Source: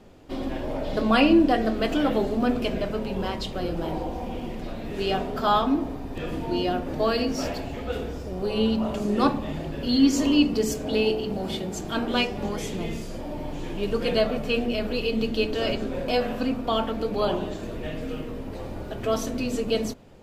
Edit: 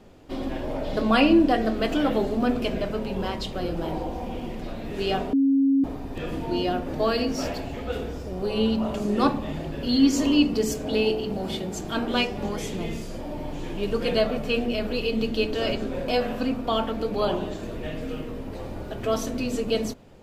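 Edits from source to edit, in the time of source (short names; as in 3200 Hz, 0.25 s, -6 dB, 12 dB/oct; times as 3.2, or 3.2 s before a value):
5.33–5.84 bleep 273 Hz -16.5 dBFS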